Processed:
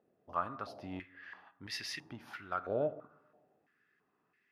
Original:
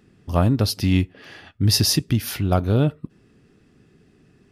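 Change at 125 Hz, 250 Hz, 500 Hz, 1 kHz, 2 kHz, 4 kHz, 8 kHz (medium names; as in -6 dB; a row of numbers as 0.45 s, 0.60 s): -32.0 dB, -24.5 dB, -11.5 dB, -9.0 dB, -10.5 dB, -22.0 dB, -26.0 dB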